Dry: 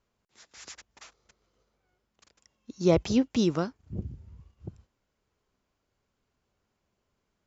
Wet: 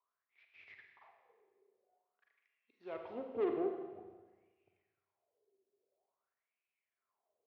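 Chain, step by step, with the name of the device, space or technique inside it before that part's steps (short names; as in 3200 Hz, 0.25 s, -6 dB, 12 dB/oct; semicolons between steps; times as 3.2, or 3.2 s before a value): wah-wah guitar rig (wah 0.49 Hz 380–2500 Hz, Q 11; tube stage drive 42 dB, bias 0.6; speaker cabinet 92–3600 Hz, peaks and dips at 93 Hz +9 dB, 170 Hz -6 dB, 400 Hz +8 dB, 680 Hz +8 dB, 1500 Hz -4 dB); Schroeder reverb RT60 1.3 s, combs from 33 ms, DRR 3 dB; gain +5 dB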